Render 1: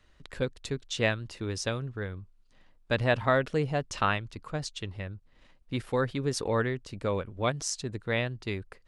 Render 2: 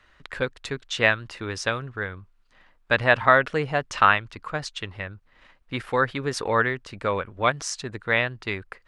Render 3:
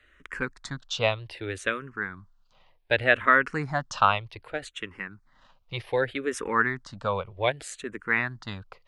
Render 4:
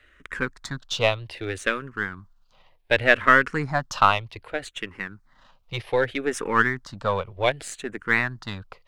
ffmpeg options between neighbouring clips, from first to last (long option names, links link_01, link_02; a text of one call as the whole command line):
ffmpeg -i in.wav -af "equalizer=frequency=1500:width_type=o:width=2.5:gain=12.5,volume=-1dB" out.wav
ffmpeg -i in.wav -filter_complex "[0:a]asplit=2[link_01][link_02];[link_02]afreqshift=-0.65[link_03];[link_01][link_03]amix=inputs=2:normalize=1" out.wav
ffmpeg -i in.wav -af "aeval=exprs='if(lt(val(0),0),0.708*val(0),val(0))':channel_layout=same,volume=4.5dB" out.wav